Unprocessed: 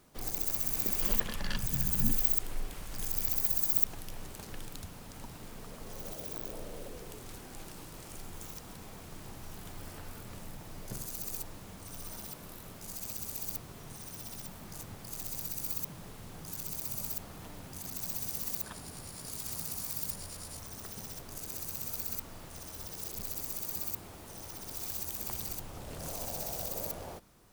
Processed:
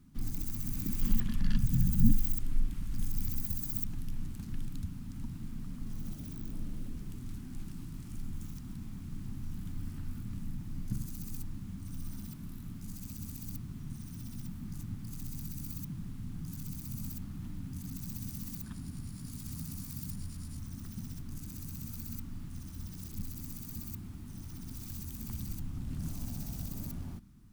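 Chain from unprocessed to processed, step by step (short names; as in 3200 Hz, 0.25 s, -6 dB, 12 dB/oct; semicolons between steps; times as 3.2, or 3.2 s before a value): EQ curve 260 Hz 0 dB, 490 Hz -30 dB, 1200 Hz -17 dB; gain +8 dB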